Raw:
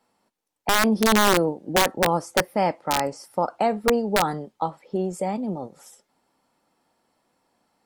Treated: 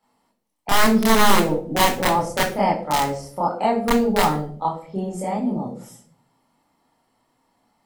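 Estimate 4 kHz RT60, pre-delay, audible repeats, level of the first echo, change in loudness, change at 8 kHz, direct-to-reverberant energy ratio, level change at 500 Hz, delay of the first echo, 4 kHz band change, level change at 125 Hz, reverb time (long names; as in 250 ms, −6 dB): 0.35 s, 26 ms, no echo audible, no echo audible, +2.5 dB, +1.0 dB, −7.0 dB, +0.5 dB, no echo audible, +2.0 dB, +4.0 dB, 0.55 s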